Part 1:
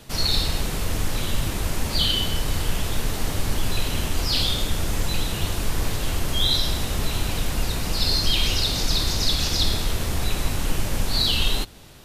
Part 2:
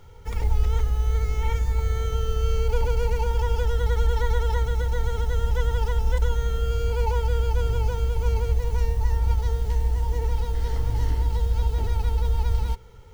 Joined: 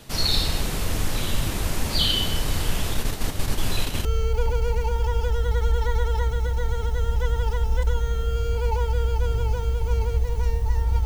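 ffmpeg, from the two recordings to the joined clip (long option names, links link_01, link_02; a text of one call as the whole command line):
ffmpeg -i cue0.wav -i cue1.wav -filter_complex "[0:a]asplit=3[link_01][link_02][link_03];[link_01]afade=type=out:start_time=2.93:duration=0.02[link_04];[link_02]agate=range=-6dB:threshold=-24dB:ratio=16:release=100:detection=peak,afade=type=in:start_time=2.93:duration=0.02,afade=type=out:start_time=4.05:duration=0.02[link_05];[link_03]afade=type=in:start_time=4.05:duration=0.02[link_06];[link_04][link_05][link_06]amix=inputs=3:normalize=0,apad=whole_dur=11.05,atrim=end=11.05,atrim=end=4.052[link_07];[1:a]atrim=start=2.398:end=9.4[link_08];[link_07][link_08]acrossfade=duration=0.004:curve1=hsin:curve2=hsin" out.wav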